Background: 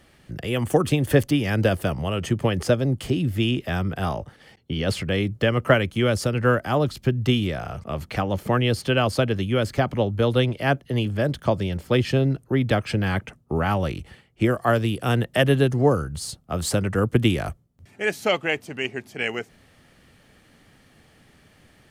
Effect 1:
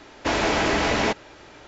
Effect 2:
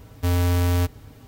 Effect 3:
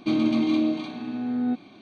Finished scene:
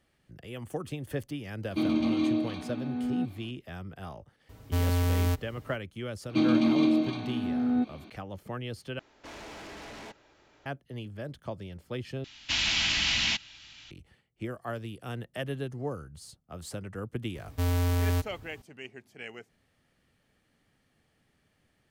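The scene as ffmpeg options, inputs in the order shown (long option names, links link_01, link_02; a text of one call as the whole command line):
ffmpeg -i bed.wav -i cue0.wav -i cue1.wav -i cue2.wav -filter_complex "[3:a]asplit=2[link_01][link_02];[2:a]asplit=2[link_03][link_04];[1:a]asplit=2[link_05][link_06];[0:a]volume=-16dB[link_07];[link_05]asoftclip=type=tanh:threshold=-26.5dB[link_08];[link_06]firequalizer=gain_entry='entry(110,0);entry(240,-6);entry(440,-25);entry(720,-12);entry(2900,14);entry(8000,6)':delay=0.05:min_phase=1[link_09];[link_07]asplit=3[link_10][link_11][link_12];[link_10]atrim=end=8.994[link_13];[link_08]atrim=end=1.67,asetpts=PTS-STARTPTS,volume=-15.5dB[link_14];[link_11]atrim=start=10.656:end=12.244[link_15];[link_09]atrim=end=1.67,asetpts=PTS-STARTPTS,volume=-8.5dB[link_16];[link_12]atrim=start=13.906[link_17];[link_01]atrim=end=1.81,asetpts=PTS-STARTPTS,volume=-4.5dB,afade=type=in:duration=0.004:curve=hsin,afade=type=out:start_time=1.806:duration=0.004:curve=hsin,adelay=1700[link_18];[link_03]atrim=end=1.27,asetpts=PTS-STARTPTS,volume=-5.5dB,afade=type=in:duration=0.004:curve=hsin,afade=type=out:start_time=1.266:duration=0.004:curve=hsin,adelay=198009S[link_19];[link_02]atrim=end=1.81,asetpts=PTS-STARTPTS,volume=-1dB,afade=type=in:duration=0.004:curve=hsin,afade=type=out:start_time=1.806:duration=0.004:curve=hsin,adelay=6290[link_20];[link_04]atrim=end=1.27,asetpts=PTS-STARTPTS,volume=-6dB,afade=type=in:duration=0.004:curve=hsin,afade=type=out:start_time=1.266:duration=0.004:curve=hsin,adelay=17350[link_21];[link_13][link_14]acrossfade=duration=0.004:curve1=hsin:curve2=hsin[link_22];[link_22][link_15]acrossfade=duration=0.004:curve1=hsin:curve2=hsin[link_23];[link_23][link_16]acrossfade=duration=0.004:curve1=hsin:curve2=hsin[link_24];[link_24][link_17]acrossfade=duration=0.004:curve1=hsin:curve2=hsin[link_25];[link_25][link_18][link_19][link_20][link_21]amix=inputs=5:normalize=0" out.wav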